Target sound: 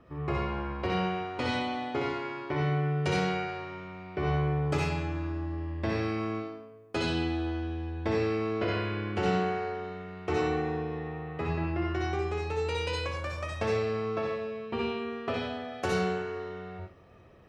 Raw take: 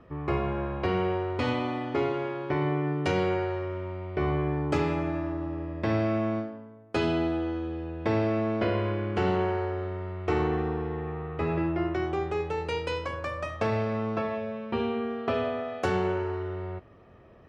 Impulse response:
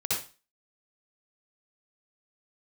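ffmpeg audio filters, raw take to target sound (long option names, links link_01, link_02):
-filter_complex "[0:a]asplit=2[link_01][link_02];[1:a]atrim=start_sample=2205,highshelf=frequency=2600:gain=12[link_03];[link_02][link_03]afir=irnorm=-1:irlink=0,volume=-8dB[link_04];[link_01][link_04]amix=inputs=2:normalize=0,volume=-6.5dB"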